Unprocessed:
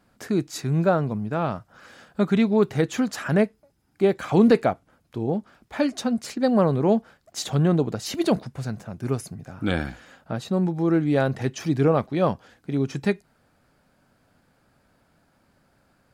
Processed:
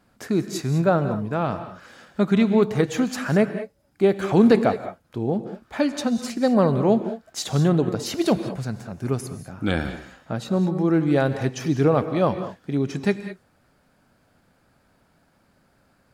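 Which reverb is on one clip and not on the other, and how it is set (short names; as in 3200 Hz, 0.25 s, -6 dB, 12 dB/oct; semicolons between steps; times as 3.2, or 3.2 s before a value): non-linear reverb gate 0.23 s rising, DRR 10 dB; gain +1 dB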